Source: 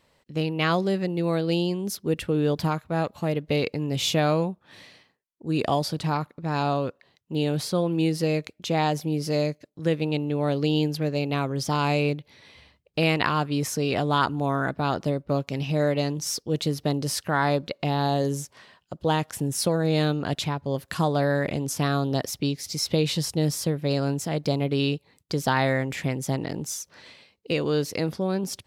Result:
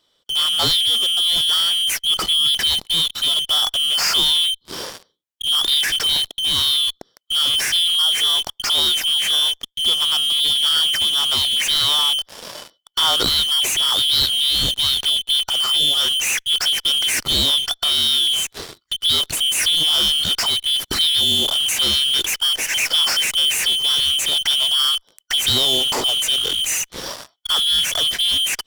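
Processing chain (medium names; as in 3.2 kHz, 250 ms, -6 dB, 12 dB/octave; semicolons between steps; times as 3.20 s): four frequency bands reordered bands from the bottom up 2413; in parallel at -8.5 dB: fuzz box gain 47 dB, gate -50 dBFS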